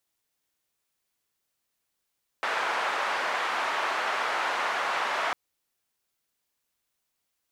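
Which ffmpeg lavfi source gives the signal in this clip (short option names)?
-f lavfi -i "anoisesrc=c=white:d=2.9:r=44100:seed=1,highpass=f=890,lowpass=f=1200,volume=-7.2dB"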